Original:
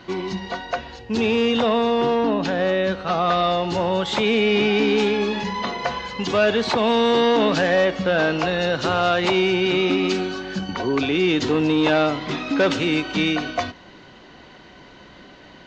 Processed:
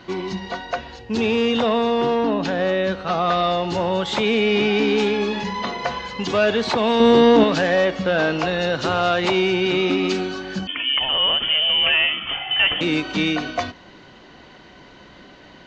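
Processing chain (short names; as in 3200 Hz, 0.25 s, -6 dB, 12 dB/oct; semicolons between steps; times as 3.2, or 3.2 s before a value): 7–7.44 low shelf 460 Hz +9.5 dB; 10.67–12.81 inverted band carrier 3300 Hz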